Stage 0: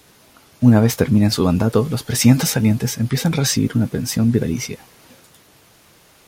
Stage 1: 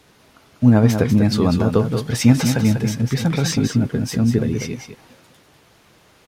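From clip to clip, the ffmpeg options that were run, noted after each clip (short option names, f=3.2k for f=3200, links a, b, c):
-af "highshelf=f=7k:g=-11,aecho=1:1:195:0.422,volume=-1dB"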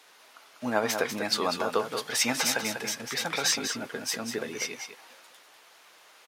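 -af "highpass=730"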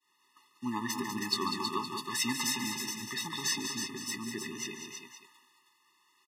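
-af "agate=range=-33dB:threshold=-48dB:ratio=3:detection=peak,aecho=1:1:145|320:0.211|0.501,afftfilt=real='re*eq(mod(floor(b*sr/1024/420),2),0)':imag='im*eq(mod(floor(b*sr/1024/420),2),0)':win_size=1024:overlap=0.75,volume=-2.5dB"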